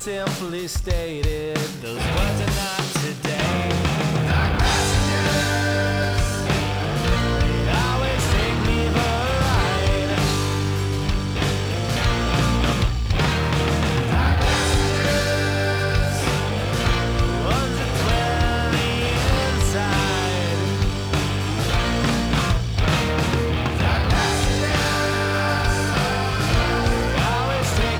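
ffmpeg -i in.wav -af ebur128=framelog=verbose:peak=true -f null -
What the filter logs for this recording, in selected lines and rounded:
Integrated loudness:
  I:         -21.0 LUFS
  Threshold: -31.0 LUFS
Loudness range:
  LRA:         1.4 LU
  Threshold: -40.9 LUFS
  LRA low:   -21.5 LUFS
  LRA high:  -20.1 LUFS
True peak:
  Peak:       -8.3 dBFS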